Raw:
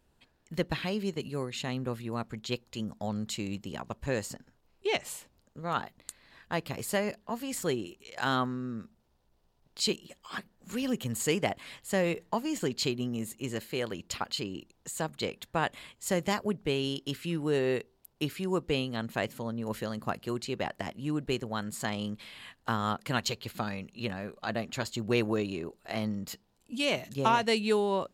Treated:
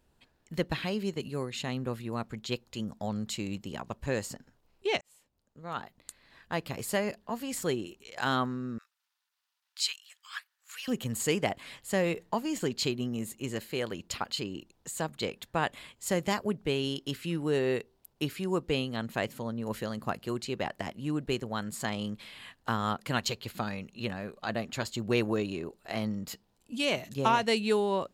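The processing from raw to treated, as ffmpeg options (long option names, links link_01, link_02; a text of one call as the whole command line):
ffmpeg -i in.wav -filter_complex "[0:a]asettb=1/sr,asplit=3[link_01][link_02][link_03];[link_01]atrim=end=8.784[link_04];[link_02]atrim=start=8.78:end=10.88,asetpts=PTS-STARTPTS,afade=type=in:duration=0.004:curve=qsin,afade=type=out:start_time=2.096:duration=0.004:curve=qsin,highpass=frequency=1300:width=0.5412,highpass=frequency=1300:width=1.3066[link_05];[link_03]atrim=start=10.876[link_06];[link_04][link_05]acrossfade=duration=0.004:curve1=hsin:curve2=qsin[link_07];[link_07][link_06]acrossfade=duration=0.004:curve1=qsin:curve2=hsin,asplit=2[link_08][link_09];[link_08]atrim=end=5.01,asetpts=PTS-STARTPTS,afade=type=out:start_time=5.006:duration=0.004:curve=hsin[link_10];[link_09]atrim=start=5.01,asetpts=PTS-STARTPTS,afade=type=in:duration=2.06:curve=qsin[link_11];[link_10][link_11]concat=n=2:v=0:a=1" out.wav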